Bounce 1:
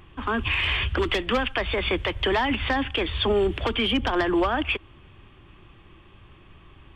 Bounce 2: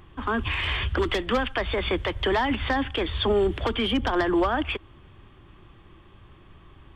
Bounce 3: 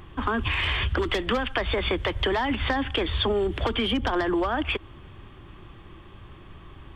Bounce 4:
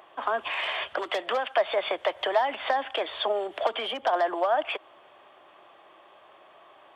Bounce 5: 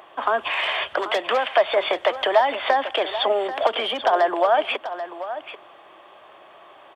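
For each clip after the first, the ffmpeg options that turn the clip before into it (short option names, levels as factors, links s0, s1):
-af "equalizer=f=2600:t=o:w=0.52:g=-6"
-af "acompressor=threshold=0.0447:ratio=6,volume=1.78"
-af "highpass=f=640:t=q:w=4.9,volume=0.596"
-af "aecho=1:1:787:0.251,volume=2"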